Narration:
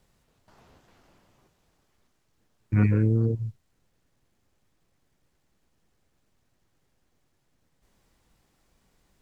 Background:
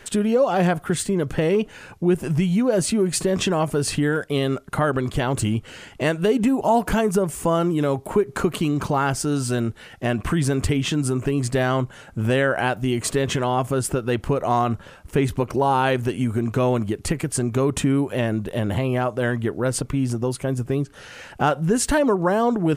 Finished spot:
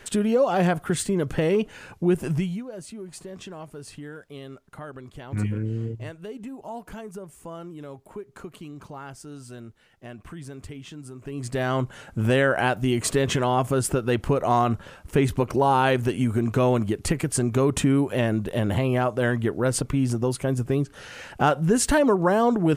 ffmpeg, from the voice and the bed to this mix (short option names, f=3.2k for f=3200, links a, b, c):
-filter_complex "[0:a]adelay=2600,volume=-6dB[a];[1:a]volume=15.5dB,afade=t=out:st=2.29:d=0.35:silence=0.158489,afade=t=in:st=11.2:d=0.77:silence=0.133352[b];[a][b]amix=inputs=2:normalize=0"